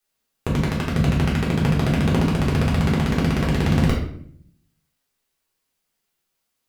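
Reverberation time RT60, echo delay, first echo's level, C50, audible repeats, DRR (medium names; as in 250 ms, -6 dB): 0.60 s, no echo, no echo, 4.5 dB, no echo, -6.0 dB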